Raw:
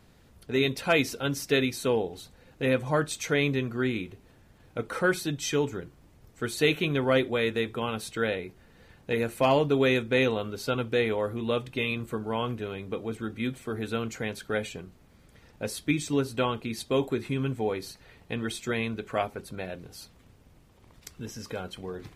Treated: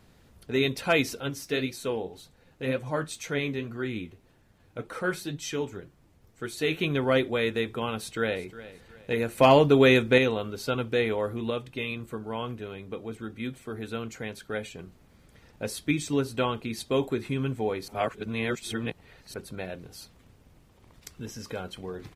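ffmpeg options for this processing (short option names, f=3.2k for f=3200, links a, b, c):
-filter_complex "[0:a]asettb=1/sr,asplit=3[a][b][c];[a]atrim=end=1.204[d];[b]atrim=start=1.2:end=6.79,asetpts=PTS-STARTPTS,afade=t=in:d=0.004:c=qsin,afade=t=out:st=5.586:d=0.004:c=qsin,flanger=delay=5.1:depth=7.9:regen=58:speed=1.9:shape=triangular[e];[c]atrim=start=6.786[f];[d][e]acrossfade=d=0.004:c1=hsin:c2=qsin[g];[g][f]acrossfade=d=0.004:c1=qsin:c2=hsin,asplit=2[h][i];[i]afade=t=in:st=7.93:d=0.01,afade=t=out:st=8.42:d=0.01,aecho=0:1:360|720|1080:0.158489|0.0554713|0.0194149[j];[h][j]amix=inputs=2:normalize=0,asplit=7[k][l][m][n][o][p][q];[k]atrim=end=9.382[r];[l]atrim=start=9.378:end=10.182,asetpts=PTS-STARTPTS,volume=5dB[s];[m]atrim=start=10.178:end=11.502[t];[n]atrim=start=11.498:end=14.792,asetpts=PTS-STARTPTS,volume=-3.5dB[u];[o]atrim=start=14.788:end=17.882[v];[p]atrim=start=17.878:end=19.342,asetpts=PTS-STARTPTS,areverse[w];[q]atrim=start=19.338[x];[r][s]acrossfade=d=0.004:c1=hsin:c2=hsin[y];[y][t]acrossfade=d=0.004:c1=hsin:c2=hsin[z];[z][u]acrossfade=d=0.004:c1=hsin:c2=hsin[aa];[aa][v]acrossfade=d=0.004:c1=hsin:c2=hsin[ab];[ab][w]acrossfade=d=0.004:c1=hsin:c2=hsin[ac];[ac][x]acrossfade=d=0.004:c1=hsin:c2=hsin"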